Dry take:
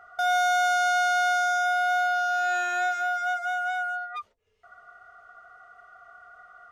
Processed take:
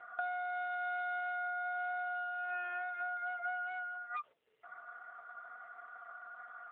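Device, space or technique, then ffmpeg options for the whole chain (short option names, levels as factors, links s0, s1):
voicemail: -filter_complex "[0:a]asplit=3[s0][s1][s2];[s0]afade=t=out:st=3.54:d=0.02[s3];[s1]equalizer=f=840:w=1.2:g=-2.5,afade=t=in:st=3.54:d=0.02,afade=t=out:st=4.19:d=0.02[s4];[s2]afade=t=in:st=4.19:d=0.02[s5];[s3][s4][s5]amix=inputs=3:normalize=0,highpass=360,lowpass=3300,acompressor=threshold=0.0178:ratio=10,volume=1.12" -ar 8000 -c:a libopencore_amrnb -b:a 7950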